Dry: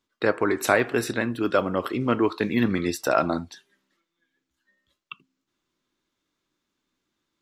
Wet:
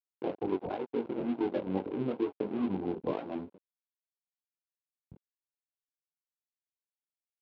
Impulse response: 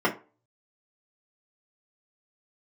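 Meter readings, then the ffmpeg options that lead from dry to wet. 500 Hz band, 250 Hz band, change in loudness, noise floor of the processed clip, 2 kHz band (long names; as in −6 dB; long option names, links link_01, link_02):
−10.0 dB, −7.5 dB, −10.0 dB, below −85 dBFS, −24.0 dB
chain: -filter_complex "[0:a]acompressor=threshold=-24dB:ratio=16,asplit=2[link_01][link_02];[link_02]adelay=21,volume=-6.5dB[link_03];[link_01][link_03]amix=inputs=2:normalize=0,asplit=2[link_04][link_05];[link_05]adelay=823,lowpass=frequency=3000:poles=1,volume=-19.5dB,asplit=2[link_06][link_07];[link_07]adelay=823,lowpass=frequency=3000:poles=1,volume=0.46,asplit=2[link_08][link_09];[link_09]adelay=823,lowpass=frequency=3000:poles=1,volume=0.46,asplit=2[link_10][link_11];[link_11]adelay=823,lowpass=frequency=3000:poles=1,volume=0.46[link_12];[link_06][link_08][link_10][link_12]amix=inputs=4:normalize=0[link_13];[link_04][link_13]amix=inputs=2:normalize=0,acrusher=samples=26:mix=1:aa=0.000001:lfo=1:lforange=26:lforate=0.8,aemphasis=mode=reproduction:type=riaa,flanger=delay=20:depth=3.4:speed=2.2,afftfilt=real='re*gte(hypot(re,im),0.0562)':imag='im*gte(hypot(re,im),0.0562)':win_size=1024:overlap=0.75,aeval=exprs='sgn(val(0))*max(abs(val(0))-0.0158,0)':channel_layout=same,highpass=360,equalizer=frequency=640:width_type=q:width=4:gain=-6,equalizer=frequency=1200:width_type=q:width=4:gain=-8,equalizer=frequency=1800:width_type=q:width=4:gain=-9,lowpass=frequency=3800:width=0.5412,lowpass=frequency=3800:width=1.3066,volume=1.5dB"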